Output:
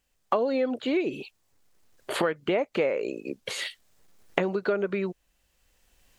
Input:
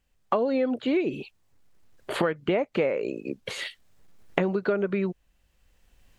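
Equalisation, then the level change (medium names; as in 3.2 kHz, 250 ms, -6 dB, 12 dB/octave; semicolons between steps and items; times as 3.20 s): tone controls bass -6 dB, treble +5 dB; 0.0 dB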